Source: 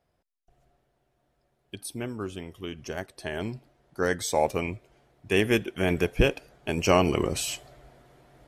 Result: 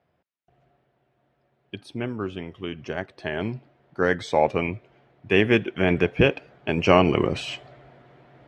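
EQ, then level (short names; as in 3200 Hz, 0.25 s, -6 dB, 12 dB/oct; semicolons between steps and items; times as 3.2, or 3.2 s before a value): Chebyshev band-pass 110–2700 Hz, order 2; +5.0 dB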